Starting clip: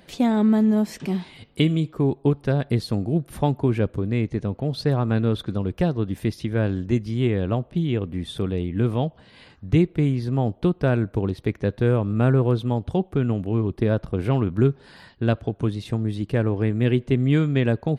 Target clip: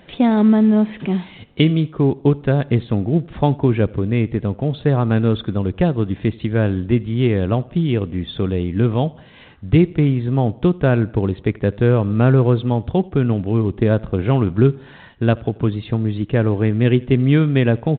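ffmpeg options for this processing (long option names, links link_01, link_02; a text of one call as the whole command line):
ffmpeg -i in.wav -filter_complex "[0:a]asplit=2[link_01][link_02];[link_02]aecho=0:1:84|168|252:0.0631|0.0309|0.0151[link_03];[link_01][link_03]amix=inputs=2:normalize=0,volume=5dB" -ar 8000 -c:a pcm_mulaw out.wav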